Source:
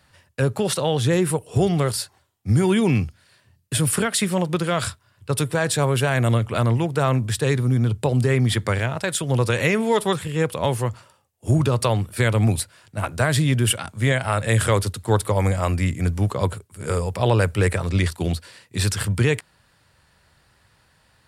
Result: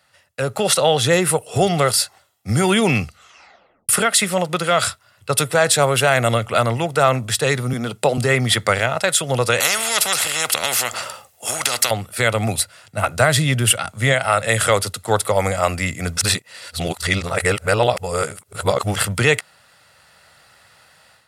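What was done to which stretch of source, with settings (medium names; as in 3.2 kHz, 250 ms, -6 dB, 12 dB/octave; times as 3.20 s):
3.04 s: tape stop 0.85 s
7.73–8.18 s: high-pass 150 Hz 24 dB/octave
9.60–11.91 s: spectrum-flattening compressor 4:1
12.59–14.14 s: bass shelf 150 Hz +8.5 dB
16.17–18.96 s: reverse
whole clip: high-pass 490 Hz 6 dB/octave; comb 1.5 ms, depth 40%; level rider gain up to 10 dB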